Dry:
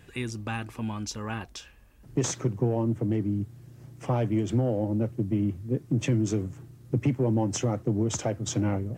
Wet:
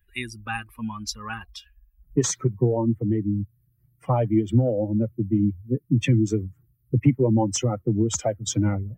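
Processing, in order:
spectral dynamics exaggerated over time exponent 2
level +9 dB

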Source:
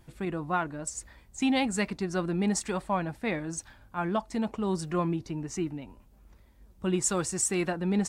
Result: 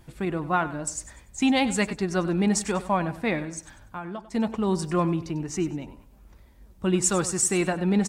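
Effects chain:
0:03.44–0:04.35: downward compressor 8 to 1, threshold −37 dBFS, peak gain reduction 13.5 dB
on a send: repeating echo 97 ms, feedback 34%, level −15 dB
on the sum: level +4.5 dB

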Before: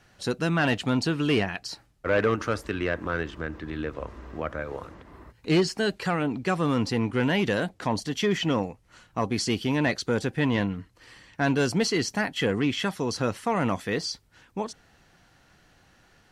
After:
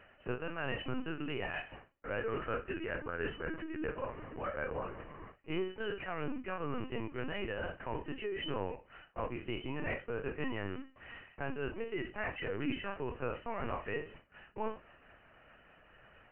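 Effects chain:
peak hold with a decay on every bin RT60 0.32 s
reversed playback
downward compressor 12 to 1, threshold −33 dBFS, peak gain reduction 16 dB
reversed playback
floating-point word with a short mantissa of 2 bits
linear-phase brick-wall band-pass 210–3,100 Hz
linear-prediction vocoder at 8 kHz pitch kept
amplitude modulation by smooth noise, depth 55%
level +3.5 dB

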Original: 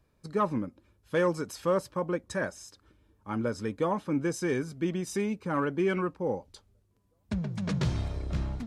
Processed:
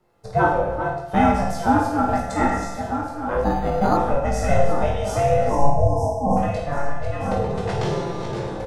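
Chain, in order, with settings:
feedback delay that plays each chunk backwards 618 ms, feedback 55%, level −8.5 dB
camcorder AGC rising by 5.5 dB per second
high-pass filter 500 Hz 6 dB per octave
tilt shelving filter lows +6.5 dB
ring modulation 280 Hz
0:05.49–0:06.37: linear-phase brick-wall band-stop 1,100–4,900 Hz
reverse bouncing-ball delay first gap 20 ms, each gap 1.6×, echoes 5
convolution reverb RT60 0.65 s, pre-delay 6 ms, DRR 0 dB
0:03.44–0:03.97: linearly interpolated sample-rate reduction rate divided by 8×
level +9 dB

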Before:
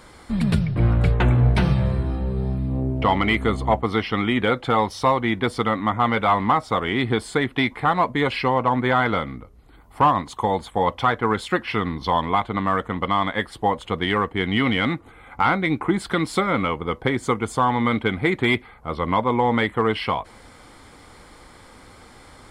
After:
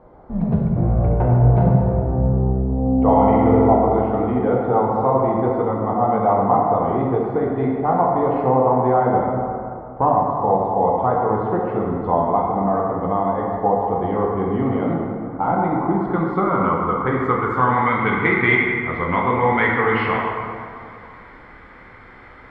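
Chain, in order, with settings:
low-pass filter sweep 710 Hz → 2,000 Hz, 0:15.43–0:18.14
0:02.72–0:03.75: flutter between parallel walls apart 11.2 metres, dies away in 1.2 s
dense smooth reverb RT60 2.5 s, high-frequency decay 0.5×, DRR −2.5 dB
level −3.5 dB

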